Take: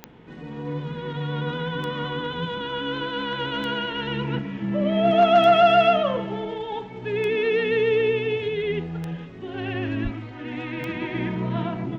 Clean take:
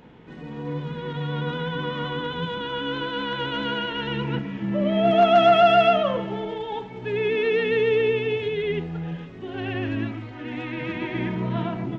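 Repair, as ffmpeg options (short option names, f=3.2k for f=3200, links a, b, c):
-filter_complex "[0:a]adeclick=t=4,asplit=3[a][b][c];[a]afade=t=out:st=10.03:d=0.02[d];[b]highpass=f=140:w=0.5412,highpass=f=140:w=1.3066,afade=t=in:st=10.03:d=0.02,afade=t=out:st=10.15:d=0.02[e];[c]afade=t=in:st=10.15:d=0.02[f];[d][e][f]amix=inputs=3:normalize=0"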